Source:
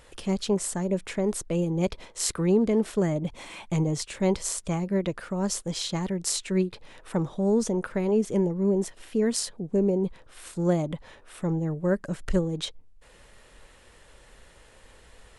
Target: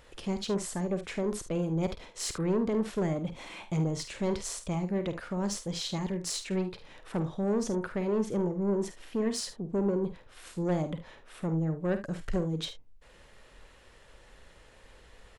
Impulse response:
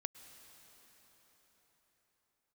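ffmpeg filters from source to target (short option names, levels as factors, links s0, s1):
-filter_complex "[0:a]equalizer=f=9300:w=1.4:g=-7,asoftclip=type=tanh:threshold=0.0891,asplit=2[s0][s1];[s1]aecho=0:1:50|74:0.299|0.168[s2];[s0][s2]amix=inputs=2:normalize=0,volume=0.75"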